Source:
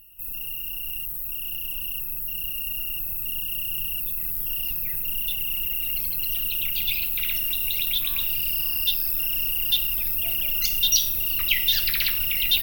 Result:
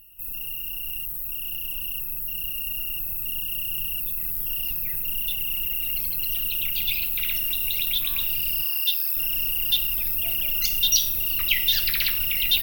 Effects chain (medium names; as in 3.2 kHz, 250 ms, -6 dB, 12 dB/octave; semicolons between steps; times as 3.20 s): 8.64–9.17 s: high-pass 640 Hz 12 dB/octave